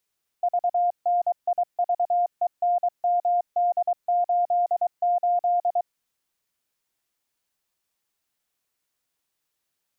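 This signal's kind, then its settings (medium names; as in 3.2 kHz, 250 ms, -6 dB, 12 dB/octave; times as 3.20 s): Morse "VNIVENMD88" 23 wpm 705 Hz -18.5 dBFS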